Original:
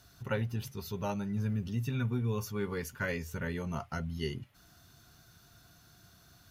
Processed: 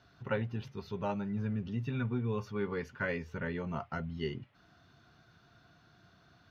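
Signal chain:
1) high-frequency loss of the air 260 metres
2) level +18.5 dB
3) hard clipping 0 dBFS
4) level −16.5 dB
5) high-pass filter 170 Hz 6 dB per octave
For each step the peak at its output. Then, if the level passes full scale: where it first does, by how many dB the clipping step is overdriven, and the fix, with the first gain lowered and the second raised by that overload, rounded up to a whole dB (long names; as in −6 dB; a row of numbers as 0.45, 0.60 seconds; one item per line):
−20.0, −1.5, −1.5, −18.0, −18.5 dBFS
no step passes full scale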